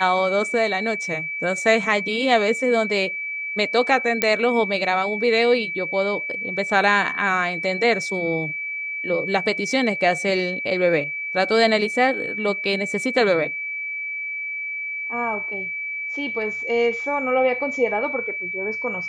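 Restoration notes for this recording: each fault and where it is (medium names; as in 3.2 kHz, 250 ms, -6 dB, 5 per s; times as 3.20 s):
whine 2.3 kHz -26 dBFS
4.22 s: pop -2 dBFS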